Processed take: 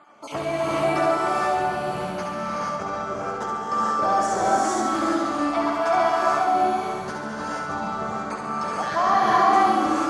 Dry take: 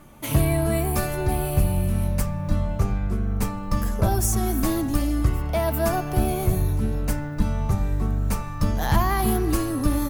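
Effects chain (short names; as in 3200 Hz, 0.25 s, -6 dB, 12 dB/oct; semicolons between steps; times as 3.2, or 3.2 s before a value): random spectral dropouts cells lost 22%; speaker cabinet 450–6100 Hz, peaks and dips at 770 Hz +5 dB, 1300 Hz +7 dB, 1800 Hz -3 dB, 2700 Hz -5 dB, 3900 Hz -4 dB, 5500 Hz -5 dB; on a send: flutter echo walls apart 11.8 m, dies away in 0.87 s; on the sum: non-linear reverb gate 0.5 s rising, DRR -5 dB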